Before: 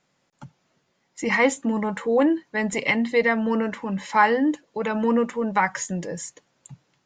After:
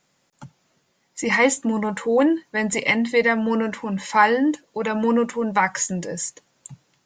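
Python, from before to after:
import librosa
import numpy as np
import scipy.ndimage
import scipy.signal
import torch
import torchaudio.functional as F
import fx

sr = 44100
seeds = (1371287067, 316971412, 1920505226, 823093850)

y = fx.high_shelf(x, sr, hz=6100.0, db=9.5)
y = y * librosa.db_to_amplitude(1.5)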